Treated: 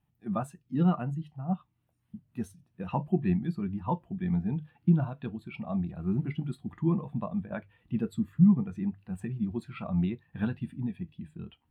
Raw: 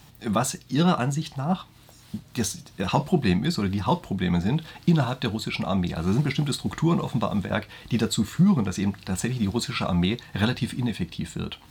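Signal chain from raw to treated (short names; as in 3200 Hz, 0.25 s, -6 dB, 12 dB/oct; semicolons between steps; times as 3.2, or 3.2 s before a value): band shelf 5300 Hz -10 dB 1.3 oct; notches 50/100/150 Hz; bit-crush 10-bit; spectral expander 1.5:1; gain -3 dB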